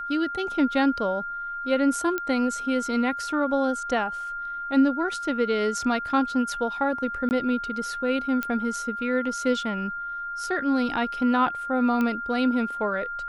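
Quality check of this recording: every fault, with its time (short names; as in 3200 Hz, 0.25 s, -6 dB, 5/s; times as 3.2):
tone 1400 Hz -30 dBFS
2.18 pop -14 dBFS
7.29–7.31 gap 19 ms
8.43 pop -14 dBFS
12.01 pop -15 dBFS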